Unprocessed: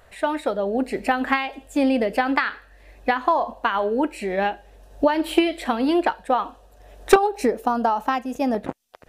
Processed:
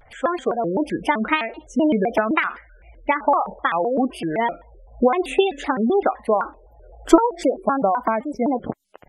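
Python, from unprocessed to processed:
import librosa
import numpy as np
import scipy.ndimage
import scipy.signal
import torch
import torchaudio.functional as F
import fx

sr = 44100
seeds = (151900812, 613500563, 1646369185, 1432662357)

y = fx.spec_gate(x, sr, threshold_db=-20, keep='strong')
y = fx.vibrato_shape(y, sr, shape='square', rate_hz=3.9, depth_cents=250.0)
y = y * librosa.db_to_amplitude(1.5)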